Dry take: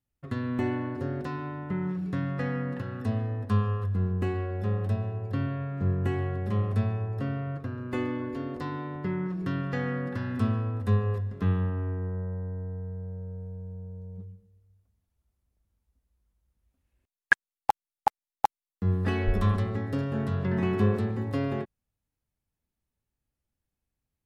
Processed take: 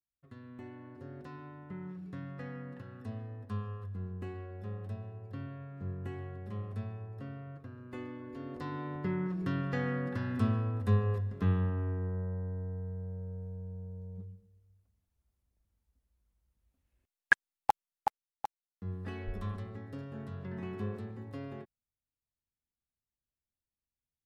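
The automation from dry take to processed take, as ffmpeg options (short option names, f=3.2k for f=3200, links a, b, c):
-af "volume=-3dB,afade=t=in:st=0.73:d=0.62:silence=0.473151,afade=t=in:st=8.23:d=0.68:silence=0.334965,afade=t=out:st=17.7:d=0.75:silence=0.298538"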